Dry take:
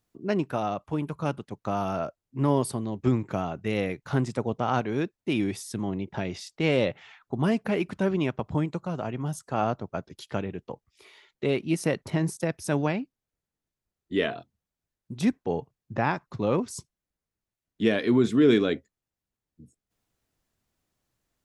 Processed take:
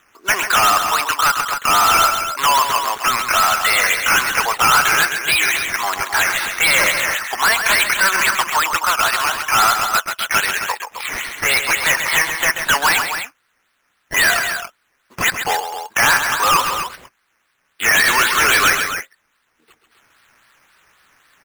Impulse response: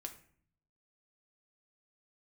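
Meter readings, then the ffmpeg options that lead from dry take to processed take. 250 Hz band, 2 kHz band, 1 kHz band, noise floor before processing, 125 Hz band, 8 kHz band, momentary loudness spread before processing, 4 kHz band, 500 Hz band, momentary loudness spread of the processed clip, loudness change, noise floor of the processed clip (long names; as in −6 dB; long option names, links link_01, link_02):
−9.0 dB, +22.5 dB, +17.5 dB, below −85 dBFS, −7.5 dB, +24.5 dB, 11 LU, +21.5 dB, −0.5 dB, 9 LU, +12.5 dB, −66 dBFS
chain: -filter_complex "[0:a]equalizer=frequency=2000:width_type=o:width=2.7:gain=8.5,acrossover=split=3300[link_01][link_02];[link_01]highpass=frequency=1300:width_type=q:width=1.6[link_03];[link_02]acompressor=threshold=-54dB:ratio=10[link_04];[link_03][link_04]amix=inputs=2:normalize=0,asplit=2[link_05][link_06];[link_06]highpass=frequency=720:poles=1,volume=29dB,asoftclip=type=tanh:threshold=-5.5dB[link_07];[link_05][link_07]amix=inputs=2:normalize=0,lowpass=frequency=3200:poles=1,volume=-6dB,acrusher=samples=9:mix=1:aa=0.000001:lfo=1:lforange=5.4:lforate=3.7,aecho=1:1:134.1|265.3:0.398|0.355"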